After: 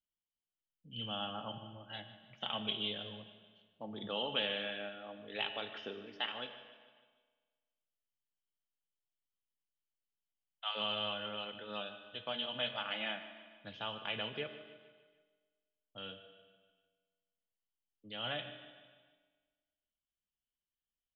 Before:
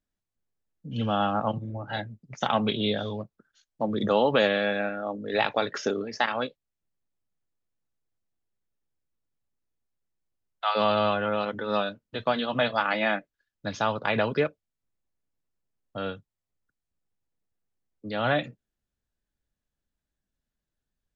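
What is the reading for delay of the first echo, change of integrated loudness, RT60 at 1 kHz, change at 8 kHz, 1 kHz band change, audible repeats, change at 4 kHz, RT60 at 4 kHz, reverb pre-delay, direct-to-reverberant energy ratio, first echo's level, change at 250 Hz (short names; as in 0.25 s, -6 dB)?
0.15 s, -12.5 dB, 1.6 s, n/a, -16.5 dB, 4, -3.0 dB, 1.5 s, 5 ms, 7.0 dB, -15.5 dB, -17.5 dB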